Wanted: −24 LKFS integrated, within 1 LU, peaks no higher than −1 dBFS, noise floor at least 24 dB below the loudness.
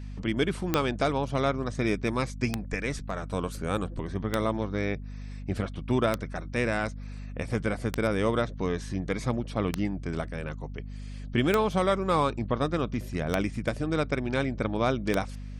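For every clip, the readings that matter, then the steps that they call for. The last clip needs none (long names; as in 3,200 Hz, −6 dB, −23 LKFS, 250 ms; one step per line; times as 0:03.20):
number of clicks 9; mains hum 50 Hz; hum harmonics up to 250 Hz; level of the hum −36 dBFS; integrated loudness −29.5 LKFS; sample peak −7.5 dBFS; target loudness −24.0 LKFS
→ click removal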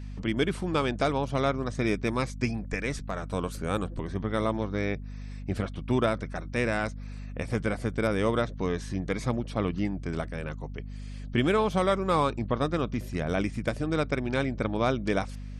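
number of clicks 0; mains hum 50 Hz; hum harmonics up to 250 Hz; level of the hum −36 dBFS
→ mains-hum notches 50/100/150/200/250 Hz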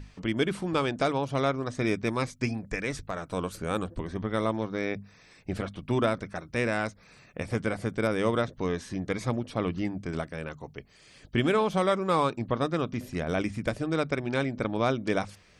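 mains hum none found; integrated loudness −30.0 LKFS; sample peak −11.0 dBFS; target loudness −24.0 LKFS
→ level +6 dB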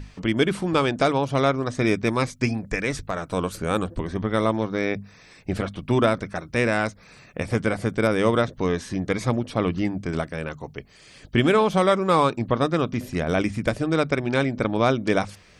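integrated loudness −24.0 LKFS; sample peak −5.0 dBFS; background noise floor −51 dBFS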